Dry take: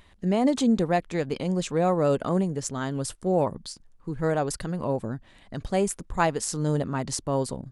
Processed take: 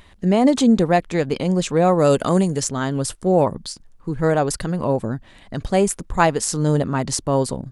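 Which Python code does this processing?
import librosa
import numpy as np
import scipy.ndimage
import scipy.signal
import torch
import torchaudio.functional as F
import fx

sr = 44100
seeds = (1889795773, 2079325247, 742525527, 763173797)

y = fx.high_shelf(x, sr, hz=fx.line((1.98, 4600.0), (2.63, 2500.0)), db=11.5, at=(1.98, 2.63), fade=0.02)
y = y * 10.0 ** (7.0 / 20.0)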